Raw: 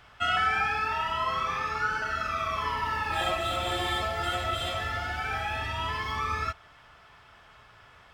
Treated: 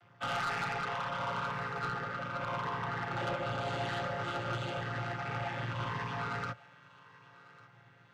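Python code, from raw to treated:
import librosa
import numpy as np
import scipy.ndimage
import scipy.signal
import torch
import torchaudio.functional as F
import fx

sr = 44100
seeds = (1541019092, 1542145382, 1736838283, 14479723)

y = fx.chord_vocoder(x, sr, chord='minor triad', root=46)
y = fx.high_shelf(y, sr, hz=3700.0, db=-6.5, at=(1.5, 3.58))
y = fx.quant_float(y, sr, bits=6)
y = 10.0 ** (-30.0 / 20.0) * np.tanh(y / 10.0 ** (-30.0 / 20.0))
y = fx.echo_thinned(y, sr, ms=1148, feedback_pct=47, hz=600.0, wet_db=-15.0)
y = fx.upward_expand(y, sr, threshold_db=-45.0, expansion=1.5)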